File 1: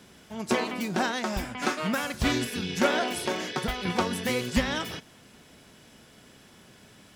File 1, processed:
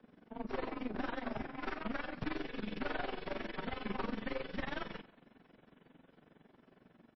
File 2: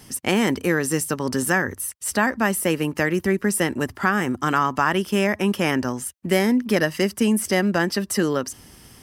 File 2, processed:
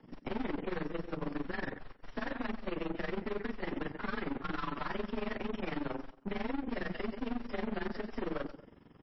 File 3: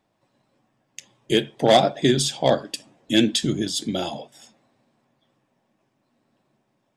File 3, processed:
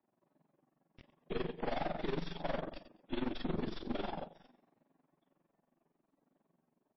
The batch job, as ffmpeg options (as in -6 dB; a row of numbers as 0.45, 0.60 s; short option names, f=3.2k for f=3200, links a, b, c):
-filter_complex "[0:a]acrossover=split=420|1200[a][b][c];[c]dynaudnorm=f=650:g=5:m=4dB[d];[a][b][d]amix=inputs=3:normalize=0,afreqshift=27,flanger=delay=16.5:depth=7.8:speed=0.44,lowshelf=f=120:t=q:w=1.5:g=-8.5,asplit=2[e][f];[f]aecho=0:1:113|226|339:0.141|0.0438|0.0136[g];[e][g]amix=inputs=2:normalize=0,asubboost=boost=3:cutoff=75,aeval=exprs='(tanh(56.2*val(0)+0.75)-tanh(0.75))/56.2':c=same,tremolo=f=22:d=0.889,adynamicsmooth=sensitivity=3:basefreq=1.5k,volume=4.5dB" -ar 16000 -c:a libmp3lame -b:a 24k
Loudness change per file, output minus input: -13.0, -17.0, -19.0 LU